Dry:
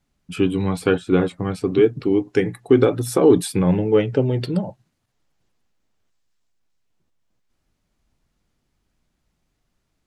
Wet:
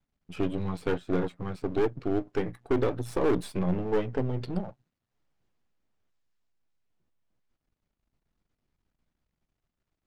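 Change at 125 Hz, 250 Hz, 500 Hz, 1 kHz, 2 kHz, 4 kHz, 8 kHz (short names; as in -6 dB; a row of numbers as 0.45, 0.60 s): -10.0, -11.0, -11.0, -6.5, -9.5, -12.5, -17.5 dB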